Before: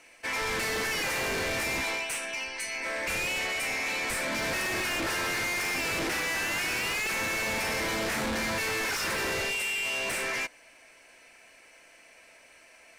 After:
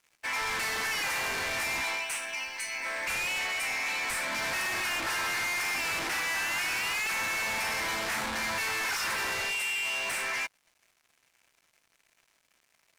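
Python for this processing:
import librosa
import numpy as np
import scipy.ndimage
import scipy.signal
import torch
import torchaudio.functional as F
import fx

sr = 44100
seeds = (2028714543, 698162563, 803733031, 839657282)

y = fx.low_shelf_res(x, sr, hz=670.0, db=-6.0, q=1.5)
y = np.sign(y) * np.maximum(np.abs(y) - 10.0 ** (-51.5 / 20.0), 0.0)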